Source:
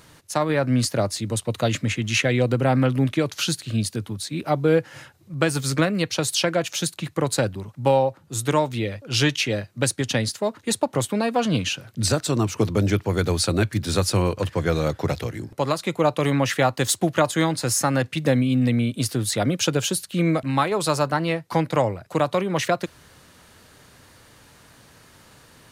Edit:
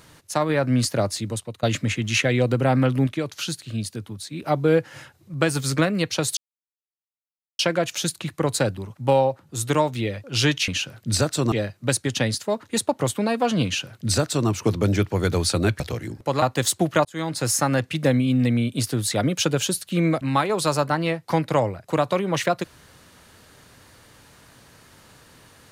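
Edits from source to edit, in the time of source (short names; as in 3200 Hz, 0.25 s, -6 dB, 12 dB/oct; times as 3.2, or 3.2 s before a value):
1.2–1.63 fade out, to -20.5 dB
3.07–4.42 gain -4.5 dB
6.37 insert silence 1.22 s
11.59–12.43 copy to 9.46
13.74–15.12 cut
15.74–16.64 cut
17.27–17.64 fade in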